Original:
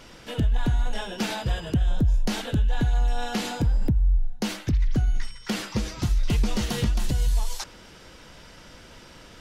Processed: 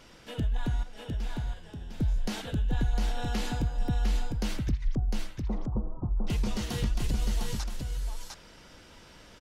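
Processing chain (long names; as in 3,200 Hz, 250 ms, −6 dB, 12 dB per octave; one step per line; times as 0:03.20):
0:00.83–0:02.00: tuned comb filter 84 Hz, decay 1.8 s, harmonics all, mix 80%
0:04.95–0:06.27: Butterworth low-pass 1,100 Hz 48 dB per octave
single-tap delay 704 ms −4 dB
level −6.5 dB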